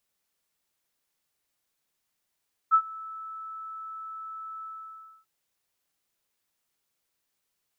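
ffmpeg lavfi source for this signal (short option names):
-f lavfi -i "aevalsrc='0.2*sin(2*PI*1310*t)':d=2.541:s=44100,afade=t=in:d=0.032,afade=t=out:st=0.032:d=0.071:silence=0.075,afade=t=out:st=1.92:d=0.621"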